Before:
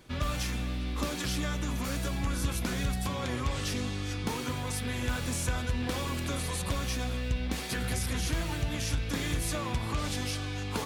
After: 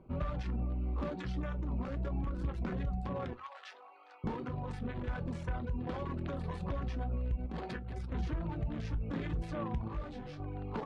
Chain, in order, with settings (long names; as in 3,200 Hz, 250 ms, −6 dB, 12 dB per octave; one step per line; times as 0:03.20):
adaptive Wiener filter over 25 samples
brickwall limiter −26.5 dBFS, peak gain reduction 5.5 dB
0:03.33–0:04.24: high-pass filter 760 Hz 24 dB per octave
reverb reduction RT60 0.67 s
low-pass filter 2,200 Hz 12 dB per octave
convolution reverb RT60 0.20 s, pre-delay 5 ms, DRR 10.5 dB
0:07.46–0:08.12: compressor whose output falls as the input rises −40 dBFS, ratio −1
0:09.88–0:10.40: micro pitch shift up and down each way 25 cents